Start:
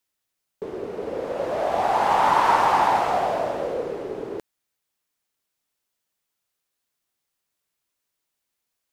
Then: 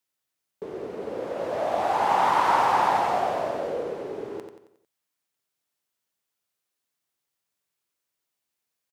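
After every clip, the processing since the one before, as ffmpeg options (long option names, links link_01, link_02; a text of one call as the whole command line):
ffmpeg -i in.wav -filter_complex "[0:a]highpass=77,asplit=2[link_01][link_02];[link_02]aecho=0:1:90|180|270|360|450:0.447|0.201|0.0905|0.0407|0.0183[link_03];[link_01][link_03]amix=inputs=2:normalize=0,volume=-3.5dB" out.wav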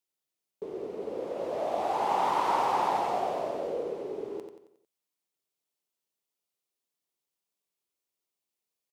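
ffmpeg -i in.wav -af "equalizer=frequency=100:width_type=o:width=0.67:gain=-6,equalizer=frequency=400:width_type=o:width=0.67:gain=4,equalizer=frequency=1600:width_type=o:width=0.67:gain=-7,volume=-5dB" out.wav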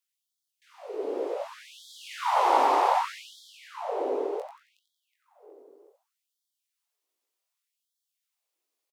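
ffmpeg -i in.wav -filter_complex "[0:a]flanger=delay=17:depth=6.1:speed=0.84,asplit=2[link_01][link_02];[link_02]adelay=368,lowpass=frequency=2300:poles=1,volume=-4dB,asplit=2[link_03][link_04];[link_04]adelay=368,lowpass=frequency=2300:poles=1,volume=0.48,asplit=2[link_05][link_06];[link_06]adelay=368,lowpass=frequency=2300:poles=1,volume=0.48,asplit=2[link_07][link_08];[link_08]adelay=368,lowpass=frequency=2300:poles=1,volume=0.48,asplit=2[link_09][link_10];[link_10]adelay=368,lowpass=frequency=2300:poles=1,volume=0.48,asplit=2[link_11][link_12];[link_12]adelay=368,lowpass=frequency=2300:poles=1,volume=0.48[link_13];[link_01][link_03][link_05][link_07][link_09][link_11][link_13]amix=inputs=7:normalize=0,afftfilt=real='re*gte(b*sr/1024,230*pow(3200/230,0.5+0.5*sin(2*PI*0.66*pts/sr)))':imag='im*gte(b*sr/1024,230*pow(3200/230,0.5+0.5*sin(2*PI*0.66*pts/sr)))':win_size=1024:overlap=0.75,volume=6.5dB" out.wav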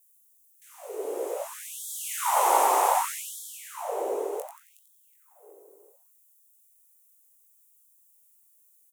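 ffmpeg -i in.wav -af "highpass=frequency=360:width=0.5412,highpass=frequency=360:width=1.3066,aexciter=amount=12.7:drive=3.8:freq=6700" out.wav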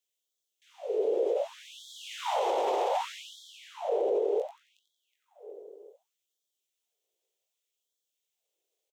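ffmpeg -i in.wav -af "firequalizer=gain_entry='entry(160,0);entry(460,13);entry(1100,-7);entry(3300,8);entry(9600,-22)':delay=0.05:min_phase=1,alimiter=limit=-16.5dB:level=0:latency=1:release=34,volume=-4dB" out.wav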